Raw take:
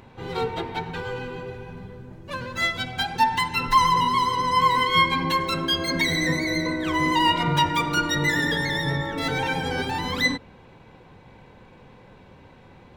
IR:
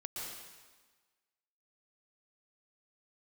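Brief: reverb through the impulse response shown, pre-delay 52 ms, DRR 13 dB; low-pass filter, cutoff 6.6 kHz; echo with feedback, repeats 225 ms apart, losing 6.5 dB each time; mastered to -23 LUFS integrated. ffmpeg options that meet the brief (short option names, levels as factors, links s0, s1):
-filter_complex "[0:a]lowpass=6600,aecho=1:1:225|450|675|900|1125|1350:0.473|0.222|0.105|0.0491|0.0231|0.0109,asplit=2[s0][s1];[1:a]atrim=start_sample=2205,adelay=52[s2];[s1][s2]afir=irnorm=-1:irlink=0,volume=0.224[s3];[s0][s3]amix=inputs=2:normalize=0,volume=0.891"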